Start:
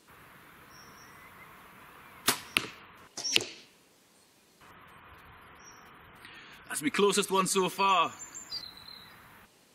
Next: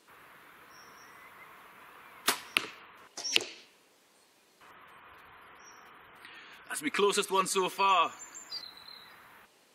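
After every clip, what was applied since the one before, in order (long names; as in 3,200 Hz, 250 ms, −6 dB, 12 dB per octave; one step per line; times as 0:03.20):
bass and treble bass −11 dB, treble −3 dB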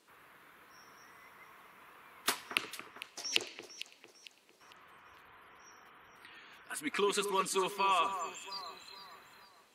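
delay that swaps between a low-pass and a high-pass 226 ms, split 2,000 Hz, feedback 61%, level −9 dB
level −4.5 dB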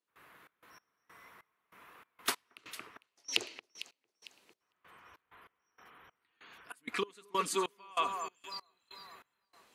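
gate pattern ".xx.x..xx." 96 BPM −24 dB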